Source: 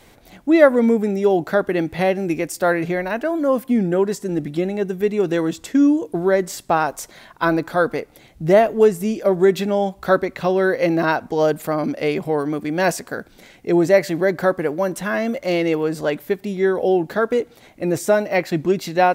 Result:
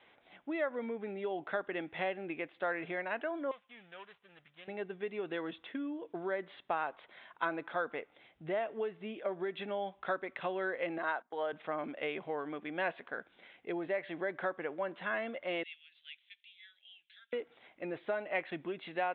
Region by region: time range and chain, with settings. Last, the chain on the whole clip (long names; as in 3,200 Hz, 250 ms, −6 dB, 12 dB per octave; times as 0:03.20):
0:03.51–0:04.68: running median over 25 samples + guitar amp tone stack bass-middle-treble 10-0-10
0:10.98–0:11.53: high-pass filter 560 Hz 6 dB per octave + parametric band 2,600 Hz −9 dB 0.38 octaves + noise gate −34 dBFS, range −17 dB
0:15.63–0:17.33: inverse Chebyshev high-pass filter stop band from 1,100 Hz, stop band 50 dB + noise that follows the level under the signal 31 dB
whole clip: Butterworth low-pass 3,600 Hz 96 dB per octave; downward compressor, threshold −17 dBFS; high-pass filter 940 Hz 6 dB per octave; level −8.5 dB